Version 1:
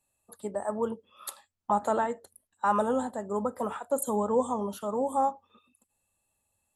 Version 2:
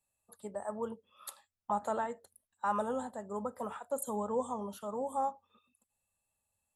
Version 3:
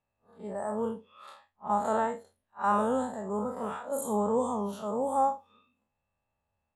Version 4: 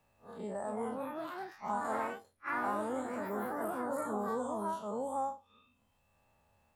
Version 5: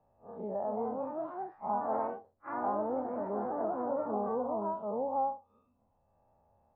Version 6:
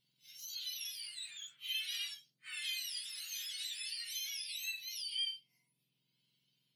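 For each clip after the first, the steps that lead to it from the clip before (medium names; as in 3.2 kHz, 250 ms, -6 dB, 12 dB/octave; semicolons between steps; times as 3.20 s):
peaking EQ 320 Hz -6 dB 0.58 oct; trim -6.5 dB
spectral blur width 96 ms; level-controlled noise filter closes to 1.9 kHz, open at -37 dBFS; trim +9 dB
ever faster or slower copies 306 ms, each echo +3 st, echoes 3; three bands compressed up and down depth 70%; trim -9 dB
resonant low-pass 760 Hz, resonance Q 1.8
spectrum inverted on a logarithmic axis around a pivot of 1.6 kHz; trim -2.5 dB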